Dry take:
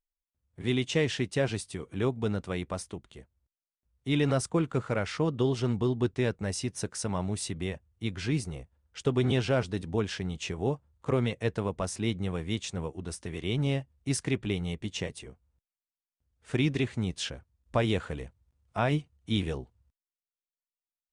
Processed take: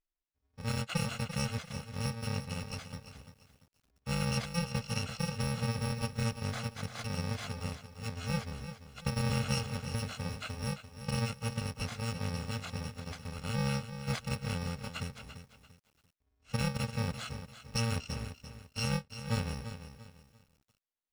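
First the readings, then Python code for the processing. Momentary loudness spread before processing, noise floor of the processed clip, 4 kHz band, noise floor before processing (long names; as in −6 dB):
10 LU, −81 dBFS, −2.5 dB, below −85 dBFS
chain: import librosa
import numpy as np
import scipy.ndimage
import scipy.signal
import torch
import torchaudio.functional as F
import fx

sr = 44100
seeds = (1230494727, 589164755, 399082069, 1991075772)

y = fx.bit_reversed(x, sr, seeds[0], block=128)
y = fx.air_absorb(y, sr, metres=110.0)
y = fx.echo_crushed(y, sr, ms=342, feedback_pct=35, bits=10, wet_db=-10.5)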